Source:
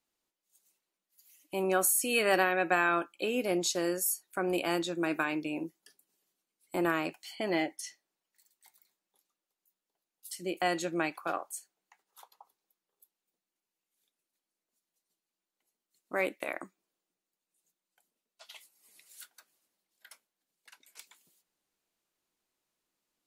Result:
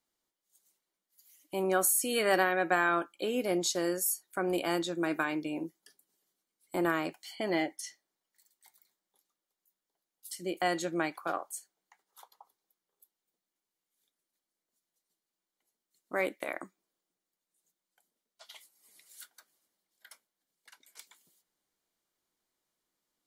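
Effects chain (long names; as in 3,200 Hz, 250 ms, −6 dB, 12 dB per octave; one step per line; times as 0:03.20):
notch filter 2,600 Hz, Q 7.7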